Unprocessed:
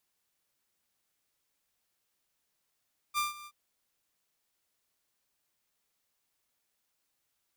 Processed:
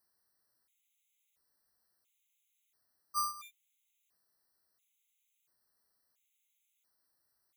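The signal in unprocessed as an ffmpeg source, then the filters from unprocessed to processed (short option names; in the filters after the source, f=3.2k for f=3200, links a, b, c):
-f lavfi -i "aevalsrc='0.0631*(2*mod(1190*t,1)-1)':d=0.375:s=44100,afade=t=in:d=0.04,afade=t=out:st=0.04:d=0.152:silence=0.119,afade=t=out:st=0.32:d=0.055"
-af "highshelf=f=9.4k:g=6,afftfilt=real='re*gt(sin(2*PI*0.73*pts/sr)*(1-2*mod(floor(b*sr/1024/2000),2)),0)':imag='im*gt(sin(2*PI*0.73*pts/sr)*(1-2*mod(floor(b*sr/1024/2000),2)),0)':win_size=1024:overlap=0.75"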